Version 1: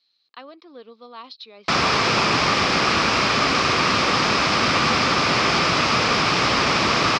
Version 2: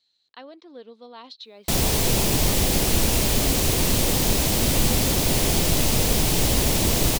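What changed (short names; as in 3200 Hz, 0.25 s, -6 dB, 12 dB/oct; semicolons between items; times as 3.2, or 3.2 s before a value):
background: add bell 1400 Hz -12 dB 1.4 oct; master: remove speaker cabinet 140–5200 Hz, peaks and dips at 1200 Hz +10 dB, 2400 Hz +6 dB, 5100 Hz +8 dB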